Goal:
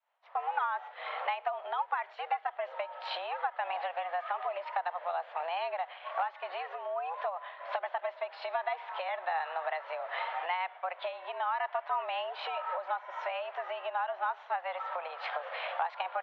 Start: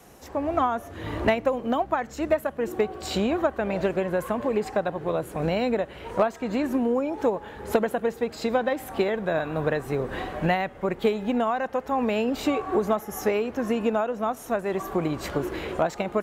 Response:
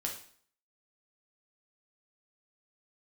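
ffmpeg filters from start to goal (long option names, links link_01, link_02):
-af "agate=range=-33dB:threshold=-35dB:ratio=3:detection=peak,acompressor=threshold=-27dB:ratio=6,highpass=frequency=500:width_type=q:width=0.5412,highpass=frequency=500:width_type=q:width=1.307,lowpass=frequency=3500:width_type=q:width=0.5176,lowpass=frequency=3500:width_type=q:width=0.7071,lowpass=frequency=3500:width_type=q:width=1.932,afreqshift=170"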